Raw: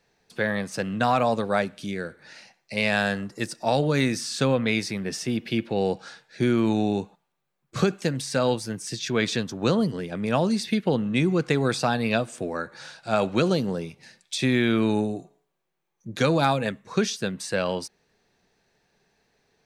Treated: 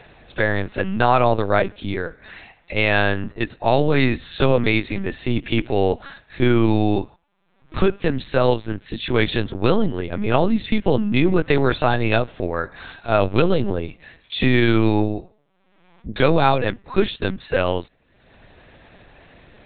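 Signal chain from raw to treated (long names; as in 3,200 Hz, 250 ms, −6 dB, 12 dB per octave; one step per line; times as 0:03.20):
upward compression, threshold −39 dBFS
linear-prediction vocoder at 8 kHz pitch kept
de-essing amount 60%
level +6 dB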